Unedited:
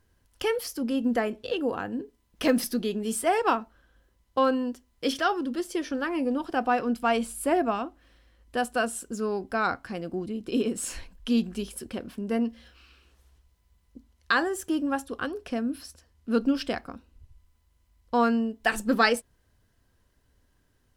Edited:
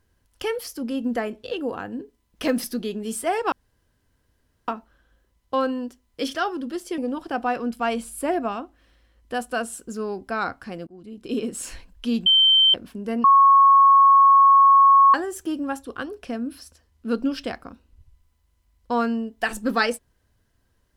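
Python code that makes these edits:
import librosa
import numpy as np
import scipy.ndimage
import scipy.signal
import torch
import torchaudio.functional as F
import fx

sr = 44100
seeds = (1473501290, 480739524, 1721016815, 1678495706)

y = fx.edit(x, sr, fx.insert_room_tone(at_s=3.52, length_s=1.16),
    fx.cut(start_s=5.82, length_s=0.39),
    fx.fade_in_from(start_s=10.1, length_s=0.52, floor_db=-23.5),
    fx.bleep(start_s=11.49, length_s=0.48, hz=3110.0, db=-12.5),
    fx.bleep(start_s=12.47, length_s=1.9, hz=1100.0, db=-10.0), tone=tone)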